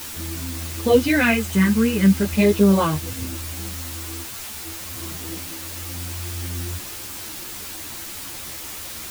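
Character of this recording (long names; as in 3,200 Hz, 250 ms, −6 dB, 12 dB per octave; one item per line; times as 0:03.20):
phaser sweep stages 4, 0.44 Hz, lowest notch 680–1,800 Hz
a quantiser's noise floor 6 bits, dither triangular
a shimmering, thickened sound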